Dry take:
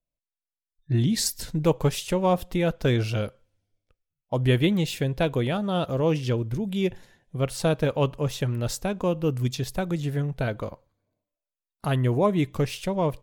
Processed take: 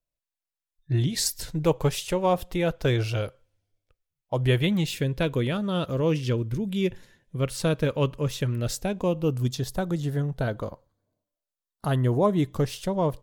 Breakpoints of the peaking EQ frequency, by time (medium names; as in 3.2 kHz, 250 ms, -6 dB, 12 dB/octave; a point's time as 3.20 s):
peaking EQ -9.5 dB 0.43 oct
4.53 s 220 Hz
4.97 s 750 Hz
8.48 s 750 Hz
9.55 s 2.4 kHz